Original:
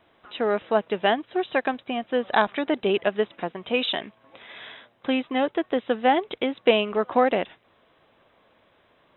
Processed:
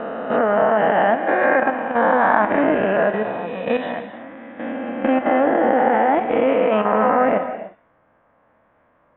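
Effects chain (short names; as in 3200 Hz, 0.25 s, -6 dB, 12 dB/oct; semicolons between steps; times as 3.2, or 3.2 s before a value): spectral swells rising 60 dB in 2.43 s; LPF 1800 Hz 24 dB/oct; level quantiser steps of 11 dB; bell 390 Hz -11 dB 0.27 oct; non-linear reverb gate 0.33 s flat, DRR 9 dB; gain +6.5 dB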